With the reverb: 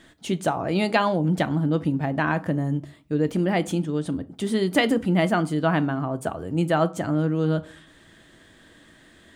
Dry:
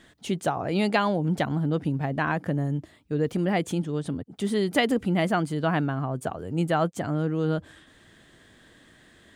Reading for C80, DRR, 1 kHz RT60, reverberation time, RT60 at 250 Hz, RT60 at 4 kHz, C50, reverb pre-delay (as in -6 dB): 26.5 dB, 11.0 dB, 0.40 s, 0.40 s, 0.50 s, 0.25 s, 20.5 dB, 3 ms